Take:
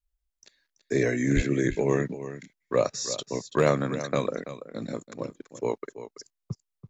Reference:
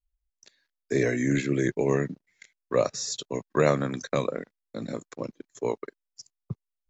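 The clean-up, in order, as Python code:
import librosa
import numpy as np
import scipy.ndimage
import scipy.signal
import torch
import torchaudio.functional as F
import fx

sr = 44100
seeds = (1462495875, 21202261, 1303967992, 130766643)

y = fx.fix_declip(x, sr, threshold_db=-11.5)
y = fx.highpass(y, sr, hz=140.0, slope=24, at=(1.35, 1.47), fade=0.02)
y = fx.fix_echo_inverse(y, sr, delay_ms=333, level_db=-12.5)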